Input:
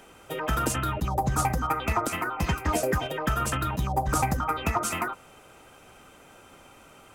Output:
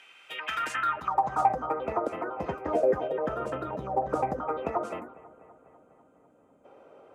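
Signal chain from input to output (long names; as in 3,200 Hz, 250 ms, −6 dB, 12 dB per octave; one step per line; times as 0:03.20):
gain on a spectral selection 0:05.00–0:06.65, 320–6,200 Hz −13 dB
bucket-brigade delay 248 ms, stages 4,096, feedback 67%, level −20 dB
band-pass filter sweep 2,600 Hz → 510 Hz, 0:00.45–0:01.74
level +6.5 dB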